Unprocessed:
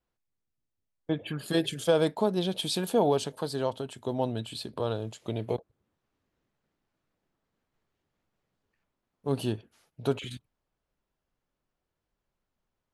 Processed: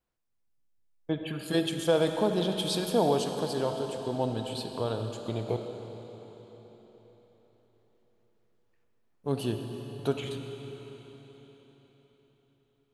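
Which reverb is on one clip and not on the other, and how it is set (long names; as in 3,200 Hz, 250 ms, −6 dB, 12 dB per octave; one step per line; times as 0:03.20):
comb and all-pass reverb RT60 4.4 s, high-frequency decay 0.95×, pre-delay 10 ms, DRR 5 dB
level −1 dB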